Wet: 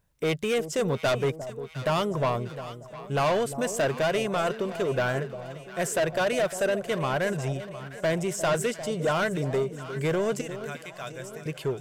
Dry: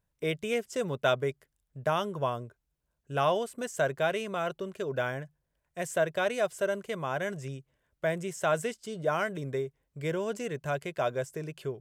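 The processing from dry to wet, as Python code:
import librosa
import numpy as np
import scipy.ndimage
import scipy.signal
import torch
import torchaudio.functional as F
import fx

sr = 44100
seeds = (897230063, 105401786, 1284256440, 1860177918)

y = fx.tone_stack(x, sr, knobs='5-5-5', at=(10.41, 11.46))
y = 10.0 ** (-29.0 / 20.0) * np.tanh(y / 10.0 ** (-29.0 / 20.0))
y = fx.echo_alternate(y, sr, ms=353, hz=870.0, feedback_pct=72, wet_db=-11.0)
y = y * 10.0 ** (8.5 / 20.0)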